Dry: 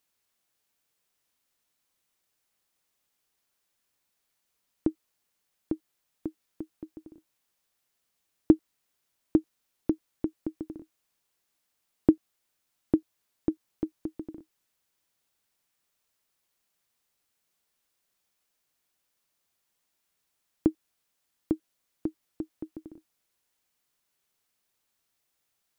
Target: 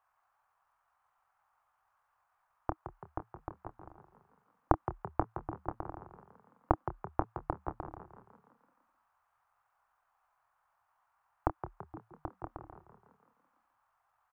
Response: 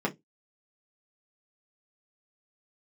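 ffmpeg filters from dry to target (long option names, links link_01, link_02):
-filter_complex "[0:a]firequalizer=gain_entry='entry(110,0);entry(190,-27);entry(760,12);entry(1200,13);entry(2000,-4);entry(3700,-19)':delay=0.05:min_phase=1,atempo=1.8,asplit=2[link_01][link_02];[link_02]adelay=27,volume=-11dB[link_03];[link_01][link_03]amix=inputs=2:normalize=0,asplit=2[link_04][link_05];[link_05]asplit=6[link_06][link_07][link_08][link_09][link_10][link_11];[link_06]adelay=167,afreqshift=37,volume=-10.5dB[link_12];[link_07]adelay=334,afreqshift=74,volume=-15.9dB[link_13];[link_08]adelay=501,afreqshift=111,volume=-21.2dB[link_14];[link_09]adelay=668,afreqshift=148,volume=-26.6dB[link_15];[link_10]adelay=835,afreqshift=185,volume=-31.9dB[link_16];[link_11]adelay=1002,afreqshift=222,volume=-37.3dB[link_17];[link_12][link_13][link_14][link_15][link_16][link_17]amix=inputs=6:normalize=0[link_18];[link_04][link_18]amix=inputs=2:normalize=0,volume=3.5dB"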